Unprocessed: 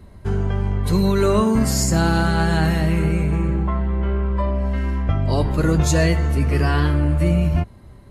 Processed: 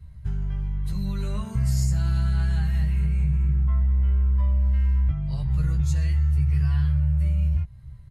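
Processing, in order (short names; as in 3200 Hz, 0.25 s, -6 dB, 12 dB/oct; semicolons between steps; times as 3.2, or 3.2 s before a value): EQ curve 150 Hz 0 dB, 260 Hz -28 dB, 2000 Hz -12 dB; compressor, threshold -22 dBFS, peak gain reduction 9 dB; doubler 15 ms -3 dB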